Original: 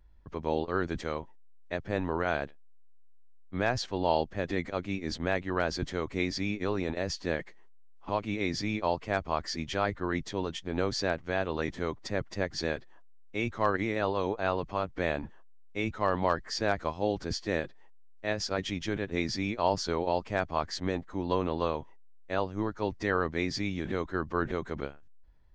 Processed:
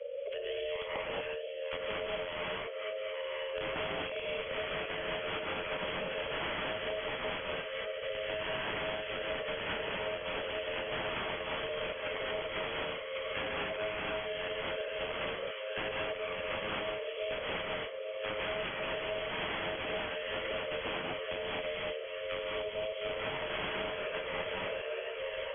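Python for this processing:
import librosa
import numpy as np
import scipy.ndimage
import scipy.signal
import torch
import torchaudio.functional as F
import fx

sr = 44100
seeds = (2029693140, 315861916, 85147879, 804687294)

y = fx.reverse_delay_fb(x, sr, ms=460, feedback_pct=68, wet_db=-12)
y = scipy.signal.sosfilt(scipy.signal.cheby2(4, 50, [230.0, 920.0], 'bandstop', fs=sr, output='sos'), y)
y = (np.mod(10.0 ** (32.5 / 20.0) * y + 1.0, 2.0) - 1.0) / 10.0 ** (32.5 / 20.0)
y = y * np.sin(2.0 * np.pi * 530.0 * np.arange(len(y)) / sr)
y = fx.rev_gated(y, sr, seeds[0], gate_ms=260, shape='rising', drr_db=-6.0)
y = (np.kron(y[::6], np.eye(6)[0]) * 6)[:len(y)]
y = fx.brickwall_lowpass(y, sr, high_hz=3400.0)
y = fx.band_squash(y, sr, depth_pct=100)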